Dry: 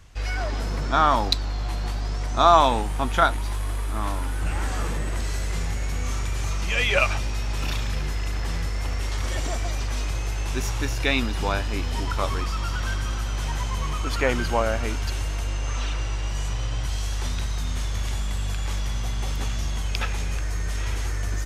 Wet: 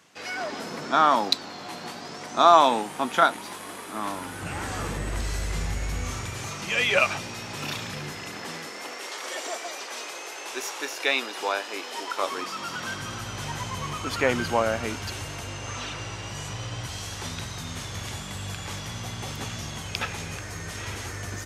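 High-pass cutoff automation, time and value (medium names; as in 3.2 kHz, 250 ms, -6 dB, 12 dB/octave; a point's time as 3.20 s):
high-pass 24 dB/octave
3.89 s 190 Hz
5.13 s 51 Hz
5.94 s 51 Hz
6.52 s 130 Hz
8.14 s 130 Hz
9.10 s 370 Hz
12.09 s 370 Hz
13.23 s 95 Hz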